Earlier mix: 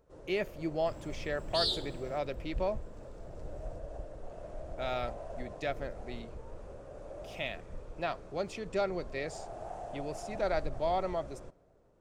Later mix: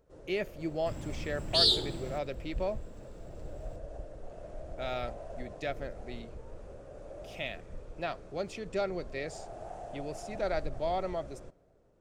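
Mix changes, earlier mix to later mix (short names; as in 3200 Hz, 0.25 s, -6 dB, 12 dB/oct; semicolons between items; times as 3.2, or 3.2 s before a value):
second sound +7.5 dB; master: add bell 1000 Hz -4 dB 0.66 oct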